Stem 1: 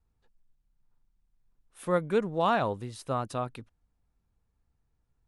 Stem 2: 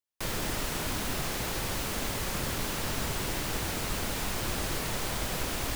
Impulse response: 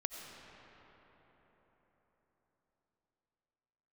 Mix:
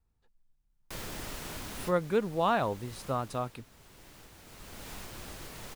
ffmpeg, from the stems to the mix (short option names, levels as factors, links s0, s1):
-filter_complex "[0:a]volume=0.841,asplit=2[s0][s1];[1:a]alimiter=limit=0.075:level=0:latency=1:release=461,adelay=700,volume=1.33,afade=t=out:st=3.01:d=0.62:silence=0.237137,afade=t=in:st=4.45:d=0.46:silence=0.354813[s2];[s1]apad=whole_len=284602[s3];[s2][s3]sidechaincompress=threshold=0.0178:ratio=6:attack=16:release=1090[s4];[s0][s4]amix=inputs=2:normalize=0"